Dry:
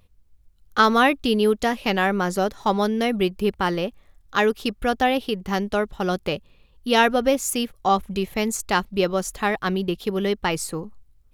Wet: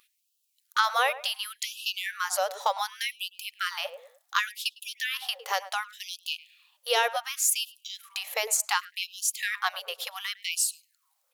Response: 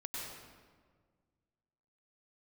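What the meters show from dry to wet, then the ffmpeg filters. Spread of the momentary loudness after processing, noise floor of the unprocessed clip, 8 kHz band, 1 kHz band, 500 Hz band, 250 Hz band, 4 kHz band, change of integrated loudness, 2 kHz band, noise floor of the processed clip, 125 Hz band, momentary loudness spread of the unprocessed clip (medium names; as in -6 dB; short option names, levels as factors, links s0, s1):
11 LU, -57 dBFS, +4.0 dB, -7.5 dB, -14.0 dB, under -40 dB, -0.5 dB, -6.5 dB, -4.5 dB, -75 dBFS, under -40 dB, 9 LU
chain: -filter_complex "[0:a]highshelf=f=3900:g=8,acompressor=threshold=0.0708:ratio=4,asplit=2[s0][s1];[s1]adelay=106,lowpass=f=1100:p=1,volume=0.224,asplit=2[s2][s3];[s3]adelay=106,lowpass=f=1100:p=1,volume=0.37,asplit=2[s4][s5];[s5]adelay=106,lowpass=f=1100:p=1,volume=0.37,asplit=2[s6][s7];[s7]adelay=106,lowpass=f=1100:p=1,volume=0.37[s8];[s0][s2][s4][s6][s8]amix=inputs=5:normalize=0,afftfilt=real='re*gte(b*sr/1024,430*pow(2600/430,0.5+0.5*sin(2*PI*0.68*pts/sr)))':imag='im*gte(b*sr/1024,430*pow(2600/430,0.5+0.5*sin(2*PI*0.68*pts/sr)))':win_size=1024:overlap=0.75,volume=1.19"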